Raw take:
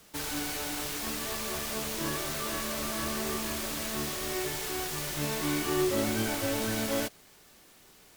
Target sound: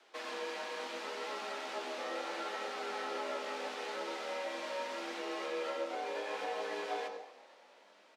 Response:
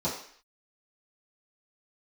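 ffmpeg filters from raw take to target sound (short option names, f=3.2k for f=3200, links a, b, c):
-filter_complex "[0:a]acompressor=threshold=-31dB:ratio=6,flanger=delay=7.9:depth=8.5:regen=56:speed=0.74:shape=sinusoidal,afreqshift=190,highpass=430,lowpass=3.3k,asplit=6[a][b][c][d][e][f];[b]adelay=237,afreqshift=35,volume=-20dB[g];[c]adelay=474,afreqshift=70,volume=-24.7dB[h];[d]adelay=711,afreqshift=105,volume=-29.5dB[i];[e]adelay=948,afreqshift=140,volume=-34.2dB[j];[f]adelay=1185,afreqshift=175,volume=-38.9dB[k];[a][g][h][i][j][k]amix=inputs=6:normalize=0,asplit=2[l][m];[1:a]atrim=start_sample=2205,adelay=88[n];[m][n]afir=irnorm=-1:irlink=0,volume=-14.5dB[o];[l][o]amix=inputs=2:normalize=0,volume=1.5dB"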